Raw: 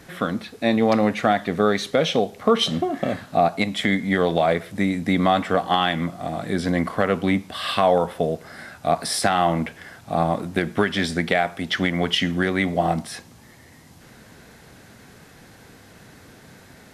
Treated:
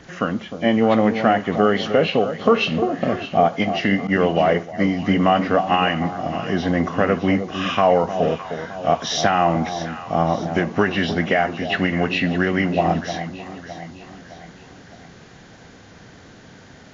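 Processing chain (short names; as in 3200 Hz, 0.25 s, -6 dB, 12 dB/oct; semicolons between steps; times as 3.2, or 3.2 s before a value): nonlinear frequency compression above 2000 Hz 1.5:1; echo with dull and thin repeats by turns 0.306 s, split 890 Hz, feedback 67%, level -9 dB; 4.07–4.92 expander -20 dBFS; gain +2 dB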